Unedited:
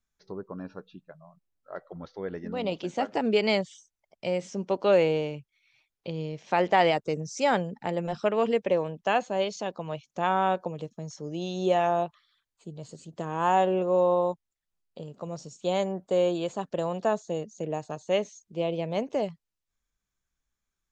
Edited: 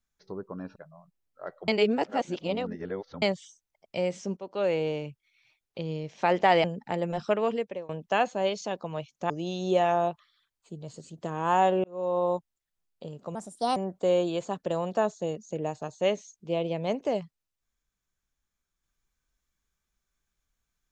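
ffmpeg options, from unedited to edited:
-filter_complex "[0:a]asplit=11[s0][s1][s2][s3][s4][s5][s6][s7][s8][s9][s10];[s0]atrim=end=0.762[s11];[s1]atrim=start=1.048:end=1.972[s12];[s2]atrim=start=1.968:end=3.512,asetpts=PTS-STARTPTS,areverse[s13];[s3]atrim=start=3.508:end=4.66,asetpts=PTS-STARTPTS,afade=t=out:st=1.148:d=0.004:c=hsin:silence=0.158489[s14];[s4]atrim=start=4.66:end=6.932,asetpts=PTS-STARTPTS,afade=t=in:d=0.71:silence=0.158489[s15];[s5]atrim=start=7.588:end=8.84,asetpts=PTS-STARTPTS,afade=t=out:st=0.692:d=0.56:silence=0.0707946[s16];[s6]atrim=start=8.84:end=10.252,asetpts=PTS-STARTPTS,afade=t=in:d=0.004:c=hsin:silence=0.0707946[s17];[s7]atrim=start=11.248:end=13.79,asetpts=PTS-STARTPTS,afade=t=out:st=2.538:d=0.004:c=hsin[s18];[s8]atrim=start=13.79:end=15.304,asetpts=PTS-STARTPTS,afade=t=in:d=0.49[s19];[s9]atrim=start=15.3:end=15.84,asetpts=PTS-STARTPTS,asetrate=57771,aresample=44100[s20];[s10]atrim=start=15.836[s21];[s11][s12]acrossfade=d=0.004:c1=hsin:c2=hsin[s22];[s22][s13]acrossfade=d=0.004:c1=hsin:c2=hsin[s23];[s14][s15]concat=n=2:v=0:a=1[s24];[s23][s24]acrossfade=d=0.004:c1=hsin:c2=hsin[s25];[s16][s17]concat=n=2:v=0:a=1[s26];[s25][s26]acrossfade=d=0.004:c1=hsin:c2=hsin[s27];[s18][s19]concat=n=2:v=0:a=1[s28];[s27][s28]acrossfade=d=0.004:c1=hsin:c2=hsin[s29];[s29][s20]acrossfade=d=0.004:c1=hsin:c2=hsin[s30];[s30][s21]acrossfade=d=0.004:c1=hsin:c2=hsin"

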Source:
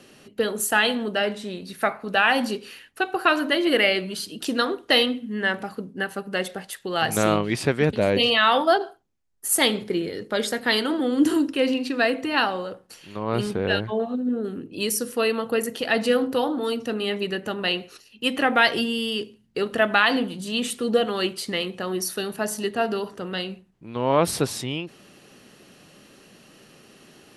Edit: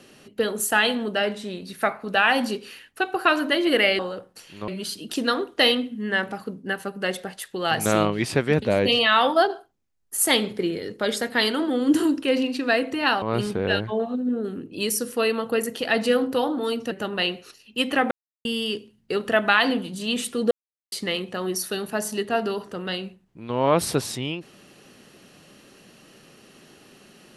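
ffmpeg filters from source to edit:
-filter_complex "[0:a]asplit=9[s0][s1][s2][s3][s4][s5][s6][s7][s8];[s0]atrim=end=3.992[s9];[s1]atrim=start=12.528:end=13.222[s10];[s2]atrim=start=3.988:end=12.532[s11];[s3]atrim=start=13.218:end=16.912[s12];[s4]atrim=start=17.368:end=18.57,asetpts=PTS-STARTPTS,afade=t=out:st=1.198:d=0.004:c=hsin[s13];[s5]atrim=start=18.57:end=18.91,asetpts=PTS-STARTPTS,volume=0[s14];[s6]atrim=start=18.91:end=20.97,asetpts=PTS-STARTPTS,afade=t=in:d=0.004:c=hsin,afade=t=out:st=2.056:d=0.004:c=hsin[s15];[s7]atrim=start=20.97:end=21.38,asetpts=PTS-STARTPTS,volume=0[s16];[s8]atrim=start=21.38,asetpts=PTS-STARTPTS,afade=t=in:d=0.004:c=hsin[s17];[s9][s10]acrossfade=d=0.004:c1=hsin:c2=hsin[s18];[s18][s11]acrossfade=d=0.004:c1=hsin:c2=hsin[s19];[s19][s12]acrossfade=d=0.004:c1=hsin:c2=hsin[s20];[s13][s14][s15][s16][s17]concat=n=5:v=0:a=1[s21];[s20][s21]acrossfade=d=0.004:c1=hsin:c2=hsin"

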